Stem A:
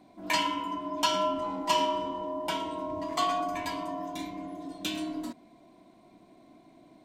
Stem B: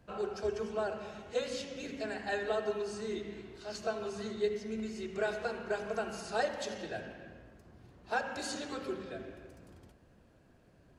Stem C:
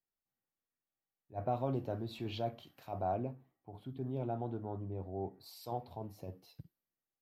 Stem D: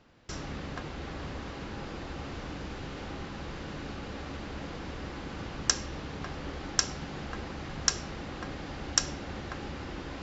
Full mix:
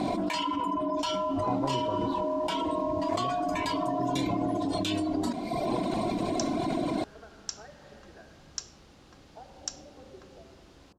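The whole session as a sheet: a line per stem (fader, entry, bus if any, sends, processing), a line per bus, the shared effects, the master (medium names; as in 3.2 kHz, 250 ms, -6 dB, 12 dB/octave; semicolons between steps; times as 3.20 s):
-6.5 dB, 0.00 s, no send, reverb removal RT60 0.8 s; band-stop 6.1 kHz, Q 17; level flattener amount 100%
-13.0 dB, 1.25 s, no send, LFO low-pass sine 0.2 Hz 700–1800 Hz; compression, threshold -32 dBFS, peak gain reduction 9.5 dB
+1.5 dB, 0.00 s, muted 2.21–3.12 s, no send, none
-16.0 dB, 0.70 s, no send, treble shelf 4.4 kHz +11.5 dB; word length cut 8-bit, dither none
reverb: none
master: low-pass 8.6 kHz 12 dB/octave; peaking EQ 1.9 kHz -4.5 dB 0.91 oct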